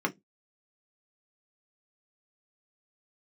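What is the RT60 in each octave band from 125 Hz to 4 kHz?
0.25, 0.25, 0.20, 0.10, 0.15, 0.15 s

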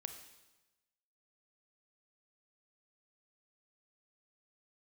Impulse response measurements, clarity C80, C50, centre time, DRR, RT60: 10.0 dB, 8.5 dB, 19 ms, 6.5 dB, 1.1 s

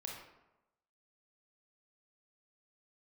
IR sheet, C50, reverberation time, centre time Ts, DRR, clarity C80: 2.0 dB, 0.95 s, 51 ms, -1.5 dB, 5.0 dB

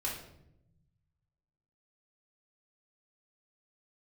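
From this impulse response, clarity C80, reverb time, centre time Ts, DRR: 8.5 dB, 0.80 s, 39 ms, -5.0 dB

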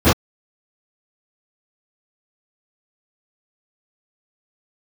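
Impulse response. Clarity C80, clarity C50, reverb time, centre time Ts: 53.5 dB, 2.5 dB, not exponential, 43 ms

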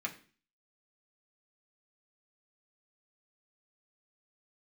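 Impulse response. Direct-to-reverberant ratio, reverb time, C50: -1.5 dB, 0.40 s, 14.0 dB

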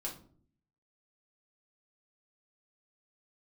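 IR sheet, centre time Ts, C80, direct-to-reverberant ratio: 20 ms, 14.5 dB, -3.0 dB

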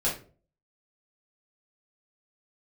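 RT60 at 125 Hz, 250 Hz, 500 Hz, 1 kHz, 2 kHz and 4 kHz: 0.55, 0.50, 0.50, 0.35, 0.30, 0.25 s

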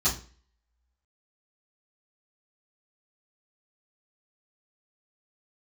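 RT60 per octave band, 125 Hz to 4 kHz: 0.40, 0.45, 0.40, 0.40, 0.40, 0.35 s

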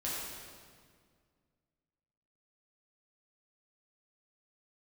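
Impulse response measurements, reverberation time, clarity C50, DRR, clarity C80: 1.9 s, -2.0 dB, -8.0 dB, 0.0 dB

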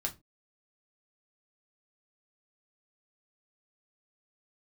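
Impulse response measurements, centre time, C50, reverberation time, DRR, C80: 9 ms, 17.0 dB, 0.25 s, 0.5 dB, 25.5 dB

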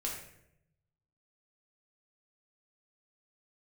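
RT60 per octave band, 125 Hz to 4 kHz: 1.4, 1.0, 0.90, 0.65, 0.70, 0.55 s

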